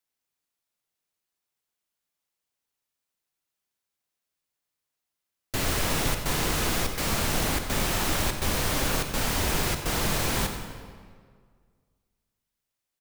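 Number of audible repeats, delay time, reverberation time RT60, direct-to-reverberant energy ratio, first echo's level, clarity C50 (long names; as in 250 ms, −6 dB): 1, 91 ms, 1.9 s, 5.5 dB, −16.0 dB, 6.5 dB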